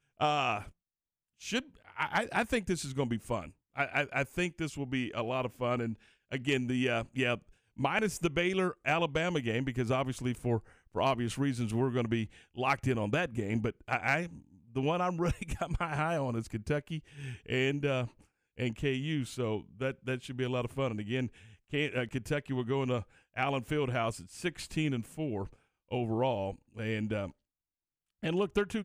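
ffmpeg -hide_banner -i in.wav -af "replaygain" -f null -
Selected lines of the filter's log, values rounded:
track_gain = +13.3 dB
track_peak = 0.100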